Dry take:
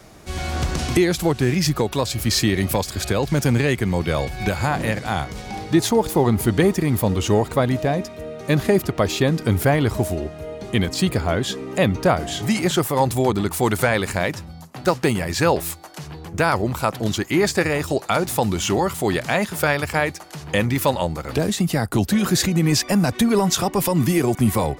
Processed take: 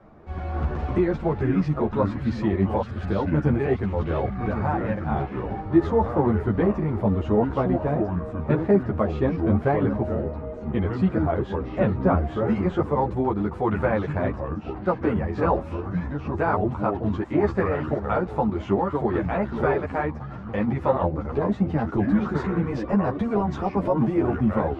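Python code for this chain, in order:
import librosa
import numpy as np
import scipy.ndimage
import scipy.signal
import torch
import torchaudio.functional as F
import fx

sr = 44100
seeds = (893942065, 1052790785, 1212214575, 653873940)

y = fx.echo_pitch(x, sr, ms=195, semitones=-4, count=3, db_per_echo=-6.0)
y = scipy.signal.sosfilt(scipy.signal.cheby1(2, 1.0, 1100.0, 'lowpass', fs=sr, output='sos'), y)
y = fx.ensemble(y, sr)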